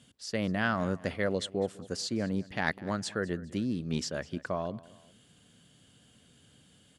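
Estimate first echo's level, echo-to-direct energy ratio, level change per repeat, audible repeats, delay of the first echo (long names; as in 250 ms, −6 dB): −20.5 dB, −19.5 dB, −7.0 dB, 2, 204 ms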